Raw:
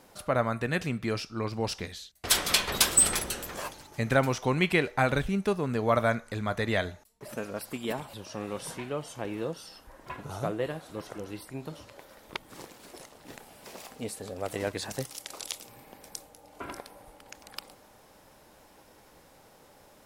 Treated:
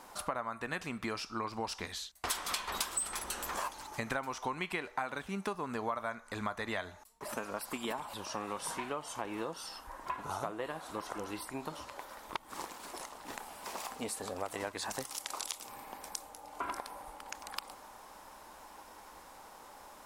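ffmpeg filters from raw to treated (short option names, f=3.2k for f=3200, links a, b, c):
-filter_complex "[0:a]asettb=1/sr,asplit=3[a][b][c];[a]atrim=end=4.954[d];[b]atrim=start=4.95:end=5.55,asetpts=PTS-STARTPTS,afade=t=in:d=0.004:c=qsin,afade=t=out:st=0.596:d=0.004:c=qsin,highpass=110[e];[c]atrim=start=5.546[f];[d][e]acrossfade=d=0.004:c1=hsin:c2=qsin[g];[g][f]acrossfade=d=0.004:c1=qsin:c2=hsin,equalizer=f=125:t=o:w=1:g=-11,equalizer=f=500:t=o:w=1:g=-4,equalizer=f=1k:t=o:w=1:g=10,equalizer=f=8k:t=o:w=1:g=3,acompressor=threshold=-35dB:ratio=6,volume=1dB"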